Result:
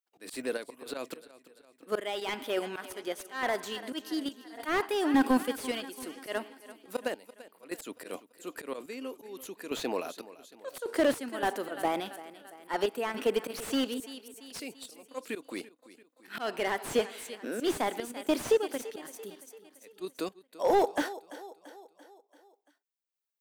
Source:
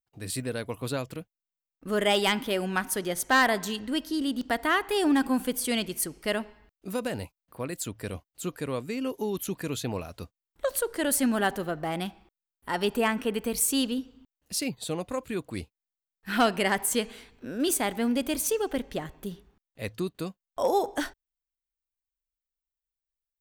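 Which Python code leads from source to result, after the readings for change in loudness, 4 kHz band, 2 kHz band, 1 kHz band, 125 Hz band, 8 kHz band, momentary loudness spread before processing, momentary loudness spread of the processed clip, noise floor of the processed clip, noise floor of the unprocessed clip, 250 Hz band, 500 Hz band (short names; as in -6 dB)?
-4.5 dB, -6.5 dB, -6.5 dB, -4.0 dB, -15.5 dB, -12.0 dB, 15 LU, 18 LU, -73 dBFS, under -85 dBFS, -5.0 dB, -1.5 dB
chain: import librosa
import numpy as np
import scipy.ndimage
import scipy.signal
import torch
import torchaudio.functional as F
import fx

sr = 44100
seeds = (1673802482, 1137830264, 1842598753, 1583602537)

p1 = scipy.signal.sosfilt(scipy.signal.butter(4, 280.0, 'highpass', fs=sr, output='sos'), x)
p2 = fx.level_steps(p1, sr, step_db=15)
p3 = p1 + (p2 * librosa.db_to_amplitude(2.5))
p4 = fx.auto_swell(p3, sr, attack_ms=125.0)
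p5 = fx.tremolo_random(p4, sr, seeds[0], hz=3.5, depth_pct=90)
p6 = p5 + fx.echo_feedback(p5, sr, ms=339, feedback_pct=54, wet_db=-17.5, dry=0)
y = fx.slew_limit(p6, sr, full_power_hz=68.0)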